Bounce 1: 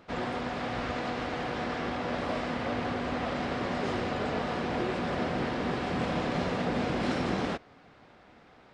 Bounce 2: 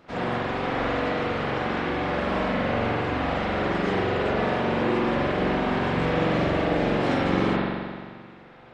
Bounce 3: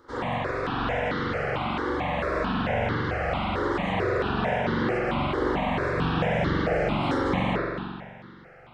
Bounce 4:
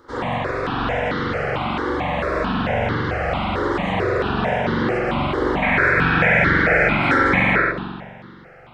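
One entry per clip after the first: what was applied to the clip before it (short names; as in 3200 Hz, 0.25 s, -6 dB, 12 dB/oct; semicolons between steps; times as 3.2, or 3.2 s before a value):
reverb removal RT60 0.57 s; spring tank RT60 1.8 s, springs 43 ms, chirp 40 ms, DRR -8 dB
step phaser 4.5 Hz 680–2500 Hz; gain +2 dB
spectral gain 5.62–7.72, 1300–2600 Hz +12 dB; gain +5 dB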